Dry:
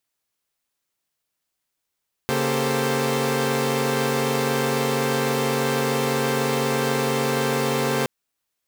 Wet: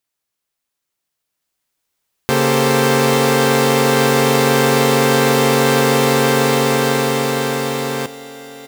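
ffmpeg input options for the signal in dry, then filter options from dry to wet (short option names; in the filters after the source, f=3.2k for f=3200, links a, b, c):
-f lavfi -i "aevalsrc='0.0596*((2*mod(138.59*t,1)-1)+(2*mod(233.08*t,1)-1)+(2*mod(392*t,1)-1)+(2*mod(440*t,1)-1)+(2*mod(523.25*t,1)-1))':d=5.77:s=44100"
-af "dynaudnorm=f=280:g=13:m=12dB,aecho=1:1:848|1696|2544|3392|4240:0.141|0.0763|0.0412|0.0222|0.012"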